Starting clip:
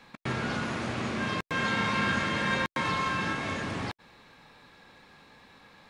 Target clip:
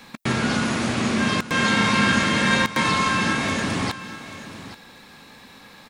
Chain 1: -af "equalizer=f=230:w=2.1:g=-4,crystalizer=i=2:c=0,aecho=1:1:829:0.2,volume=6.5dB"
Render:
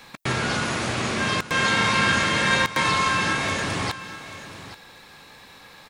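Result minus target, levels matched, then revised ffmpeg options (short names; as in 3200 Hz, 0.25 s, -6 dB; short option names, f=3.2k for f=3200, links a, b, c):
250 Hz band -6.0 dB
-af "equalizer=f=230:w=2.1:g=5.5,crystalizer=i=2:c=0,aecho=1:1:829:0.2,volume=6.5dB"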